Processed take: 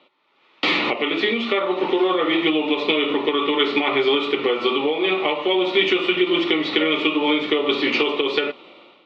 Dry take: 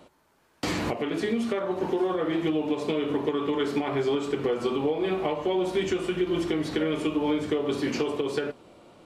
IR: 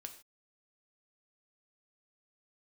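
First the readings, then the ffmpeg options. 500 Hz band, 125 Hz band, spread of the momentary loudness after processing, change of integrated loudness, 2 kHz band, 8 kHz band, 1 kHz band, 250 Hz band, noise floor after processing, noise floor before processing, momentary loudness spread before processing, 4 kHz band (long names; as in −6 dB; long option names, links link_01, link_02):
+6.0 dB, −5.5 dB, 3 LU, +8.0 dB, +14.5 dB, can't be measured, +8.5 dB, +4.5 dB, −58 dBFS, −65 dBFS, 3 LU, +16.0 dB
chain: -af "equalizer=frequency=1600:width=0.93:gain=4.5,dynaudnorm=framelen=160:gausssize=5:maxgain=14dB,highpass=420,equalizer=frequency=470:width_type=q:width=4:gain=-4,equalizer=frequency=680:width_type=q:width=4:gain=-9,equalizer=frequency=980:width_type=q:width=4:gain=-5,equalizer=frequency=1600:width_type=q:width=4:gain=-7,equalizer=frequency=2500:width_type=q:width=4:gain=4,equalizer=frequency=3600:width_type=q:width=4:gain=7,lowpass=frequency=3800:width=0.5412,lowpass=frequency=3800:width=1.3066,bandreject=frequency=1600:width=5.1"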